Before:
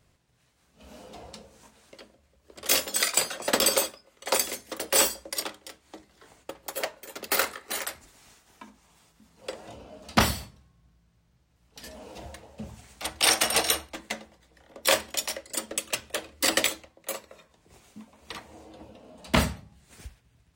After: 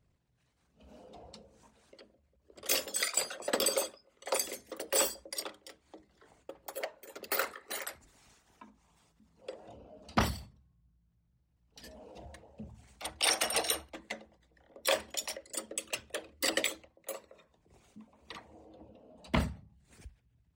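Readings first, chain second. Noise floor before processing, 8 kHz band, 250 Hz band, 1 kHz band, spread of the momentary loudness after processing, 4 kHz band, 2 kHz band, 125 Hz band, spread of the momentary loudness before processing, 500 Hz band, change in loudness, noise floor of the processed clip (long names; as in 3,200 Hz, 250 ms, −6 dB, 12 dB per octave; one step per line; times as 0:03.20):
−67 dBFS, −7.5 dB, −6.5 dB, −7.5 dB, 22 LU, −8.0 dB, −7.5 dB, −5.5 dB, 22 LU, −5.5 dB, −7.5 dB, −74 dBFS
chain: spectral envelope exaggerated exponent 1.5
level −7 dB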